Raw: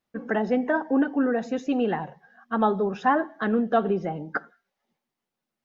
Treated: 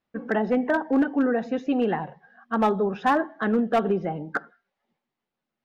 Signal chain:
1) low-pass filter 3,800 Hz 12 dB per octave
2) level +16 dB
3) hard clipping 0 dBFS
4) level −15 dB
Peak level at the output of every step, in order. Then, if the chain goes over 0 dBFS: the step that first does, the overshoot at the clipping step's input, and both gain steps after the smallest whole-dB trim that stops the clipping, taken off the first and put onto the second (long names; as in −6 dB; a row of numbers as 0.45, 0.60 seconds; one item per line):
−9.5, +6.5, 0.0, −15.0 dBFS
step 2, 6.5 dB
step 2 +9 dB, step 4 −8 dB